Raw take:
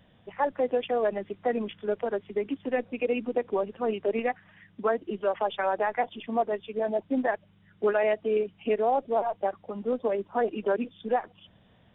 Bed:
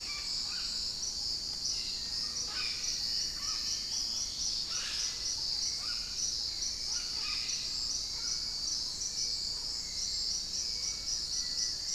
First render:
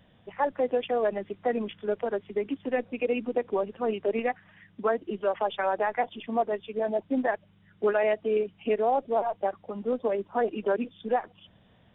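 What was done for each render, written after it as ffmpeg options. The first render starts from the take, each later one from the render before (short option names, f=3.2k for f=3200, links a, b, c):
-af anull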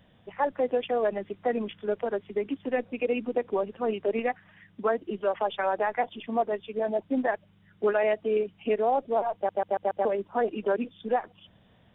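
-filter_complex "[0:a]asplit=6[a][b][c][d][e][f];[a]atrim=end=9.492[g];[b]atrim=start=9.348:end=9.492[h];[c]atrim=start=9.348:end=9.492[i];[d]atrim=start=9.348:end=9.492[j];[e]atrim=start=9.348:end=9.492[k];[f]atrim=start=10.048[l];[g][h]acrossfade=d=0.004:c1=hsin:c2=hsin[m];[m][i]acrossfade=d=0.004:c1=hsin:c2=hsin[n];[n][j]acrossfade=d=0.004:c1=hsin:c2=hsin[o];[o][k]acrossfade=d=0.004:c1=hsin:c2=hsin[p];[p][l]acrossfade=d=0.004:c1=hsin:c2=hsin"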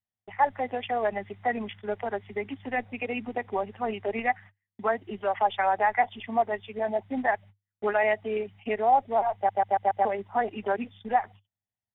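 -af "agate=range=-40dB:threshold=-46dB:ratio=16:detection=peak,equalizer=f=100:t=o:w=0.33:g=11,equalizer=f=160:t=o:w=0.33:g=-7,equalizer=f=315:t=o:w=0.33:g=-11,equalizer=f=500:t=o:w=0.33:g=-8,equalizer=f=800:t=o:w=0.33:g=8,equalizer=f=2k:t=o:w=0.33:g=9"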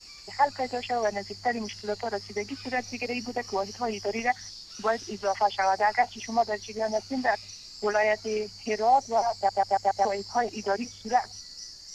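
-filter_complex "[1:a]volume=-9dB[a];[0:a][a]amix=inputs=2:normalize=0"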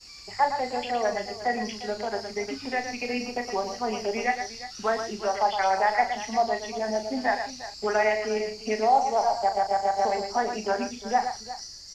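-filter_complex "[0:a]asplit=2[a][b];[b]adelay=37,volume=-8.5dB[c];[a][c]amix=inputs=2:normalize=0,aecho=1:1:115|354:0.398|0.188"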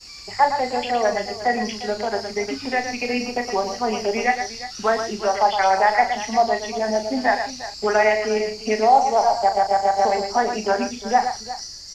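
-af "volume=6dB,alimiter=limit=-3dB:level=0:latency=1"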